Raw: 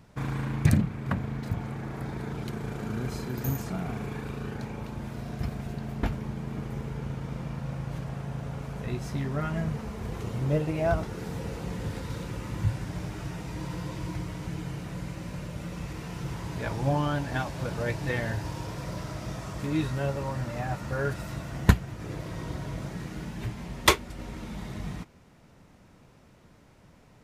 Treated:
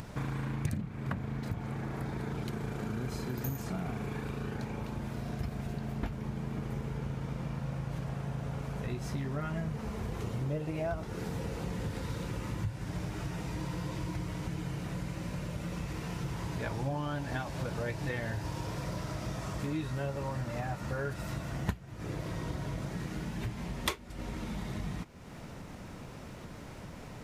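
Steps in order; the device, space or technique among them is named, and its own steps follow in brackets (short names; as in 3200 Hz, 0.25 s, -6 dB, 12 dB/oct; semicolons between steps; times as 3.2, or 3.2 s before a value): upward and downward compression (upward compressor, threshold -34 dBFS; compressor 4:1, threshold -32 dBFS, peak gain reduction 18 dB)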